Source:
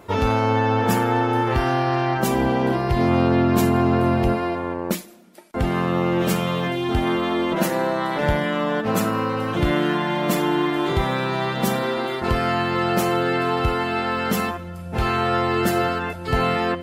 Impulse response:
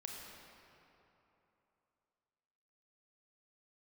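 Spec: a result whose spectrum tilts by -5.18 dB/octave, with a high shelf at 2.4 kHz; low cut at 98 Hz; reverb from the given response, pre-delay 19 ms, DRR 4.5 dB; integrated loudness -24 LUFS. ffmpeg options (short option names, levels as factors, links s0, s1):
-filter_complex "[0:a]highpass=98,highshelf=f=2400:g=-3.5,asplit=2[s0][s1];[1:a]atrim=start_sample=2205,adelay=19[s2];[s1][s2]afir=irnorm=-1:irlink=0,volume=0.75[s3];[s0][s3]amix=inputs=2:normalize=0,volume=0.708"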